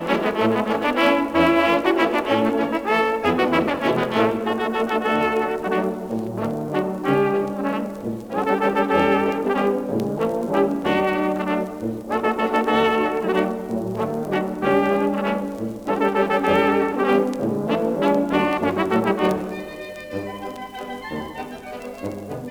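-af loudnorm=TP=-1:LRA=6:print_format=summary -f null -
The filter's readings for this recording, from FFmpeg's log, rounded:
Input Integrated:    -21.5 LUFS
Input True Peak:      -4.9 dBTP
Input LRA:            12.4 LU
Input Threshold:     -32.0 LUFS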